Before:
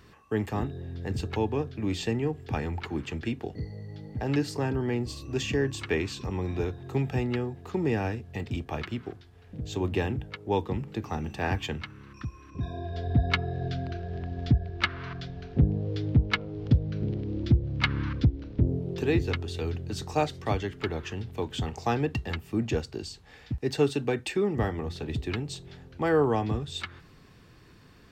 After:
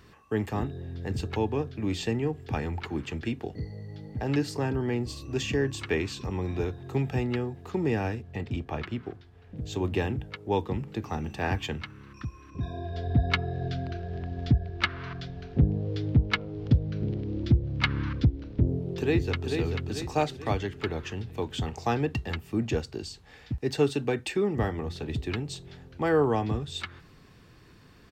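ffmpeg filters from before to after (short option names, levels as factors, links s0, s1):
-filter_complex "[0:a]asettb=1/sr,asplit=3[s0][s1][s2];[s0]atrim=end=8.224[s3];[s1]atrim=start=8.22:end=9.57,asetpts=PTS-STARTPTS,afade=t=in:d=0.004:c=qsin,afade=t=out:st=1.346:d=0.004:c=qsin,aemphasis=mode=reproduction:type=cd[s4];[s2]atrim=start=9.566[s5];[s3][s4]acrossfade=d=0.004:c1=hsin:c2=qsin[s6];[s6][s5]acrossfade=d=0.004:c1=qsin:c2=hsin,asplit=2[s7][s8];[s8]afade=t=in:st=18.99:d=0.01,afade=t=out:st=19.48:d=0.01,aecho=0:1:440|880|1320|1760|2200|2640:0.562341|0.253054|0.113874|0.0512434|0.0230595|0.0103768[s9];[s7][s9]amix=inputs=2:normalize=0"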